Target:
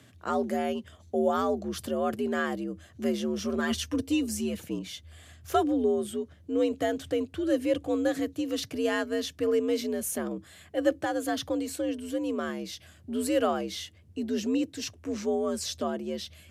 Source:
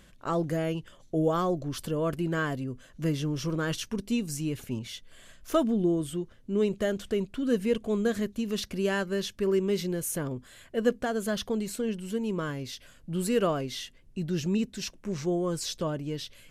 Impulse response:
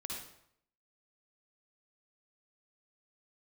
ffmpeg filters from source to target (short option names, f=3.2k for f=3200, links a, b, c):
-filter_complex "[0:a]asettb=1/sr,asplit=3[a][b][c];[a]atrim=end=3.574[d];[b]atrim=start=3.57:end=4.57,asetpts=PTS-STARTPTS,afade=t=in:d=0.004:c=qsin,afade=t=out:st=0.996:d=0.004:c=qsin,aecho=1:1:5.3:0.71,atrim=end_sample=44100[e];[c]atrim=start=4.566[f];[d][e]acrossfade=d=0.004:c1=hsin:c2=qsin[g];[g][f]acrossfade=d=0.004:c1=qsin:c2=hsin,afreqshift=69"